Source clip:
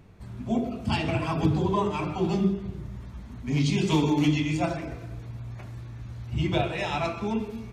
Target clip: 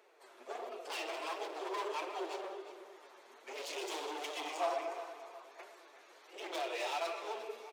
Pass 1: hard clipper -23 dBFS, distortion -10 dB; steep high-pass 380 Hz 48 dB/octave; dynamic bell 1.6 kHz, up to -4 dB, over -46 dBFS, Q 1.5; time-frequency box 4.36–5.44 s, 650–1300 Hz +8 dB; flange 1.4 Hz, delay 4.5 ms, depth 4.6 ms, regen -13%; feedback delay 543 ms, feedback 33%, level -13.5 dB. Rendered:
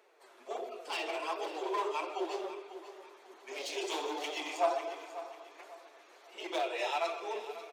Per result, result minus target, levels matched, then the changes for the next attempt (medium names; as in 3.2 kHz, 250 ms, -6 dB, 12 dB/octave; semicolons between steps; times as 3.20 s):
echo 185 ms late; hard clipper: distortion -6 dB
change: feedback delay 358 ms, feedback 33%, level -13.5 dB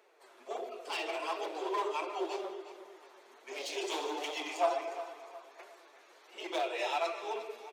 hard clipper: distortion -6 dB
change: hard clipper -30.5 dBFS, distortion -5 dB